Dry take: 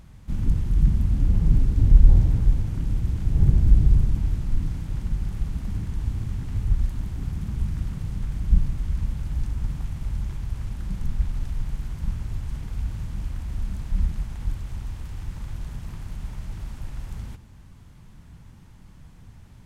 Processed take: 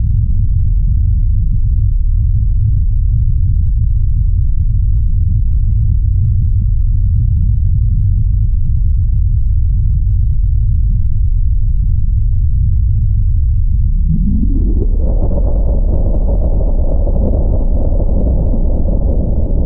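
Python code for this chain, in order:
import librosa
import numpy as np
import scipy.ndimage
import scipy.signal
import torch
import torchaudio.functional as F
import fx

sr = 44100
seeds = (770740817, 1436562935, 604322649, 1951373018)

p1 = fx.wiener(x, sr, points=9)
p2 = scipy.signal.sosfilt(scipy.signal.butter(2, 1300.0, 'lowpass', fs=sr, output='sos'), p1)
p3 = fx.peak_eq(p2, sr, hz=120.0, db=-11.0, octaves=0.83)
p4 = fx.env_lowpass(p3, sr, base_hz=350.0, full_db=-16.0)
p5 = p4 + fx.echo_feedback(p4, sr, ms=930, feedback_pct=56, wet_db=-8.5, dry=0)
p6 = fx.filter_sweep_lowpass(p5, sr, from_hz=110.0, to_hz=570.0, start_s=13.82, end_s=15.12, q=5.4)
p7 = fx.env_flatten(p6, sr, amount_pct=100)
y = p7 * 10.0 ** (-5.0 / 20.0)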